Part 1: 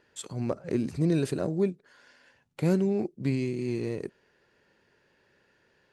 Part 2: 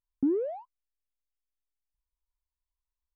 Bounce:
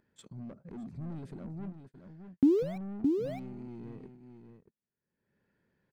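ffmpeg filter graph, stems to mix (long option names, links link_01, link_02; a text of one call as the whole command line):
ffmpeg -i stem1.wav -i stem2.wav -filter_complex "[0:a]equalizer=frequency=210:width=1.5:gain=8,bandreject=frequency=2800:width=11,asoftclip=type=tanh:threshold=-26.5dB,volume=-17dB,asplit=3[link_01][link_02][link_03];[link_02]volume=-9dB[link_04];[1:a]aeval=exprs='val(0)*gte(abs(val(0)),0.0112)':channel_layout=same,adelay=2200,volume=0dB,asplit=2[link_05][link_06];[link_06]volume=-4.5dB[link_07];[link_03]apad=whole_len=236135[link_08];[link_05][link_08]sidechaincompress=threshold=-50dB:ratio=8:attack=16:release=390[link_09];[link_04][link_07]amix=inputs=2:normalize=0,aecho=0:1:617:1[link_10];[link_01][link_09][link_10]amix=inputs=3:normalize=0,agate=range=-36dB:threshold=-57dB:ratio=16:detection=peak,bass=frequency=250:gain=8,treble=frequency=4000:gain=-10,acompressor=mode=upward:threshold=-46dB:ratio=2.5" out.wav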